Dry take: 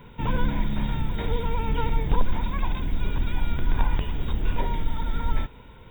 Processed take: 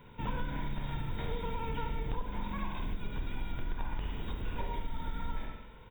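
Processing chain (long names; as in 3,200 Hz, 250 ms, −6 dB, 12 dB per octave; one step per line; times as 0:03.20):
single-tap delay 158 ms −17 dB
convolution reverb RT60 0.75 s, pre-delay 44 ms, DRR 3 dB
downward compressor 4 to 1, threshold −21 dBFS, peak gain reduction 9.5 dB
low-shelf EQ 340 Hz −2.5 dB
level −7 dB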